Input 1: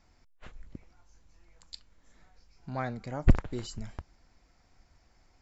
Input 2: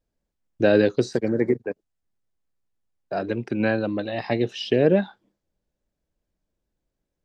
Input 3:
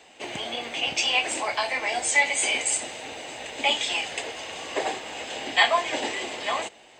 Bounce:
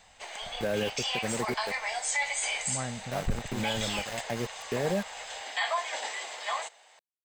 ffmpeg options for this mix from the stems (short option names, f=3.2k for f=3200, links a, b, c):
-filter_complex "[0:a]equalizer=f=220:t=o:w=2.4:g=7.5,volume=-4.5dB[a];[1:a]lowpass=2.6k,aeval=exprs='val(0)*gte(abs(val(0)),0.0473)':c=same,volume=-6.5dB[b];[2:a]acrossover=split=8300[c][d];[d]acompressor=threshold=-42dB:ratio=4:attack=1:release=60[e];[c][e]amix=inputs=2:normalize=0,highpass=760,equalizer=f=2.7k:t=o:w=0.61:g=-7.5,volume=-2dB[f];[a][b][f]amix=inputs=3:normalize=0,equalizer=f=320:t=o:w=0.52:g=-10.5,alimiter=limit=-20dB:level=0:latency=1:release=36"